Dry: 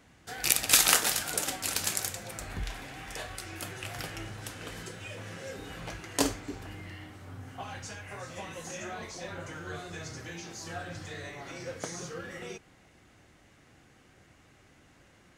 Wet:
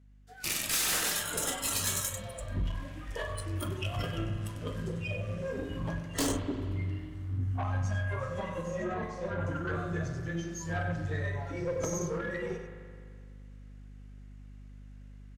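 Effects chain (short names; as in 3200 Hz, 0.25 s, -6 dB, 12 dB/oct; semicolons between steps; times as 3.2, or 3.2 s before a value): 8.61–9.45 high shelf 3600 Hz -4.5 dB; echo 96 ms -8 dB; spectral noise reduction 19 dB; hum 50 Hz, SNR 21 dB; AGC gain up to 10 dB; tube stage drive 26 dB, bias 0.4; bell 820 Hz -4 dB 0.77 oct; spring tank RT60 2.1 s, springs 42 ms, chirp 75 ms, DRR 6 dB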